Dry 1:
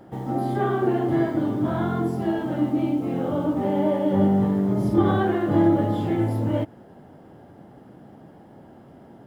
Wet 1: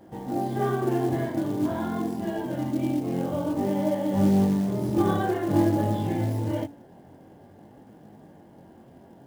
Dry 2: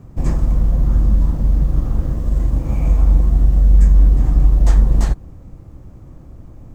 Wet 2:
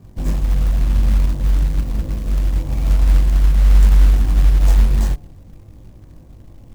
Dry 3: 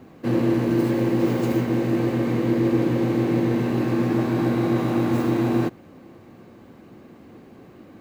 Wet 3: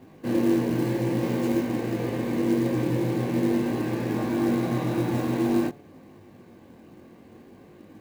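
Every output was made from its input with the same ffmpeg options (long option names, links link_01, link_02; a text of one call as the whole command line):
ffmpeg -i in.wav -af "bandreject=frequency=142.8:width_type=h:width=4,bandreject=frequency=285.6:width_type=h:width=4,bandreject=frequency=428.4:width_type=h:width=4,bandreject=frequency=571.2:width_type=h:width=4,bandreject=frequency=714:width_type=h:width=4,bandreject=frequency=856.8:width_type=h:width=4,flanger=delay=19:depth=3.8:speed=0.5,bandreject=frequency=1300:width=7,acrusher=bits=6:mode=log:mix=0:aa=0.000001" out.wav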